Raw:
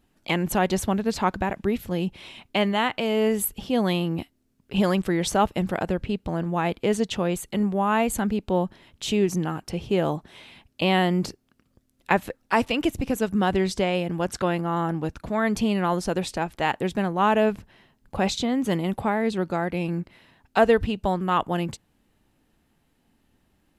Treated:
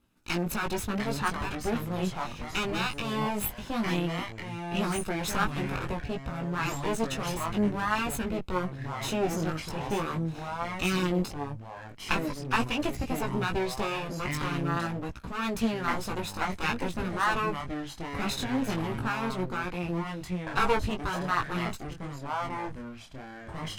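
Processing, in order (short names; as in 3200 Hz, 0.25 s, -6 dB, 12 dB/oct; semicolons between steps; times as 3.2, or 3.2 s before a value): minimum comb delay 0.77 ms; chorus 0.46 Hz, delay 16.5 ms, depth 2.8 ms; echoes that change speed 0.624 s, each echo -4 st, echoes 2, each echo -6 dB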